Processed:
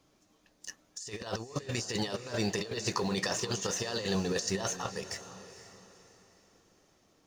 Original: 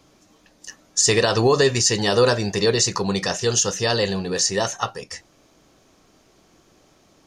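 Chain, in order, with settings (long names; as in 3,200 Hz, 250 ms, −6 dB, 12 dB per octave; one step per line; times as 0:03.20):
mu-law and A-law mismatch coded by A
0:01.71–0:04.15: low-shelf EQ 120 Hz −9 dB
compressor whose output falls as the input rises −25 dBFS, ratio −0.5
feedback delay with all-pass diffusion 484 ms, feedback 40%, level −13 dB
level −8.5 dB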